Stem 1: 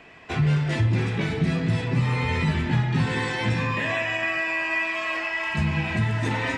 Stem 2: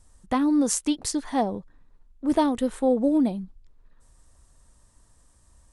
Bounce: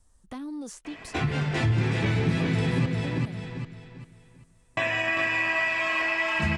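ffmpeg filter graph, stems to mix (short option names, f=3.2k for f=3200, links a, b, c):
-filter_complex "[0:a]bandreject=f=50:t=h:w=6,bandreject=f=100:t=h:w=6,bandreject=f=150:t=h:w=6,adelay=850,volume=3dB,asplit=3[a][b][c];[a]atrim=end=2.86,asetpts=PTS-STARTPTS,afade=t=out:st=2.856:d=0.004:c=hsin[d];[b]atrim=start=2.86:end=4.77,asetpts=PTS-STARTPTS,volume=0[e];[c]atrim=start=4.77,asetpts=PTS-STARTPTS,afade=t=in:d=0.004:c=hsin[f];[d][e][f]concat=n=3:v=0:a=1,asplit=2[g][h];[h]volume=-4dB[i];[1:a]acrossover=split=330|2500|5800[j][k][l][m];[j]acompressor=threshold=-31dB:ratio=4[n];[k]acompressor=threshold=-34dB:ratio=4[o];[l]acompressor=threshold=-42dB:ratio=4[p];[m]acompressor=threshold=-44dB:ratio=4[q];[n][o][p][q]amix=inputs=4:normalize=0,asoftclip=type=tanh:threshold=-23dB,volume=-6.5dB[r];[i]aecho=0:1:395|790|1185|1580|1975:1|0.33|0.109|0.0359|0.0119[s];[g][r][s]amix=inputs=3:normalize=0,acompressor=threshold=-29dB:ratio=1.5"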